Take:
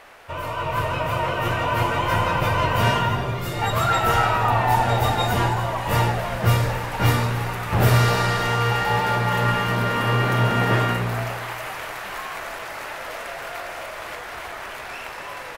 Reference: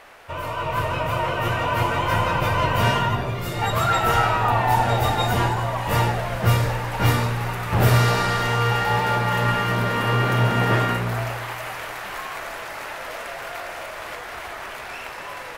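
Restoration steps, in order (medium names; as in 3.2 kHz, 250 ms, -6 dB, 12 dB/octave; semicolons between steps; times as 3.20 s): interpolate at 1.51/6.80/9.68/12.59/14.52 s, 2.6 ms; inverse comb 285 ms -15.5 dB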